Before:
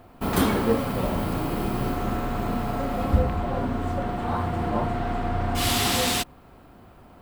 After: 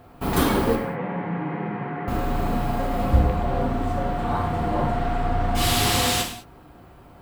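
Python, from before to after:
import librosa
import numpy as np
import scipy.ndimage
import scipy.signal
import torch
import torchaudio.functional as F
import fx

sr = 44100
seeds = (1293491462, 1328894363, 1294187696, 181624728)

y = fx.cabinet(x, sr, low_hz=170.0, low_slope=24, high_hz=2100.0, hz=(170.0, 250.0, 350.0, 610.0, 1200.0, 2000.0), db=(6, -8, -6, -9, -5, 6), at=(0.75, 2.08))
y = fx.rev_gated(y, sr, seeds[0], gate_ms=230, shape='falling', drr_db=2.5)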